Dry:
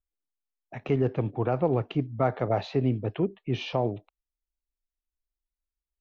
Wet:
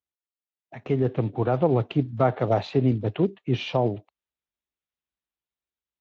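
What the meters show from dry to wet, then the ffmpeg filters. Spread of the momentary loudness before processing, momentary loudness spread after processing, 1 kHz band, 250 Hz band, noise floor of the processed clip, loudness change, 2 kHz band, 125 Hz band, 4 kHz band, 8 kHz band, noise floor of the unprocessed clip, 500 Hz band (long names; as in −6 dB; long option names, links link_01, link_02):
6 LU, 6 LU, +3.5 dB, +3.5 dB, below −85 dBFS, +3.5 dB, +2.0 dB, +3.5 dB, +3.0 dB, can't be measured, below −85 dBFS, +3.5 dB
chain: -af "dynaudnorm=framelen=390:gausssize=5:maxgain=6.5dB,volume=-3dB" -ar 16000 -c:a libspeex -b:a 17k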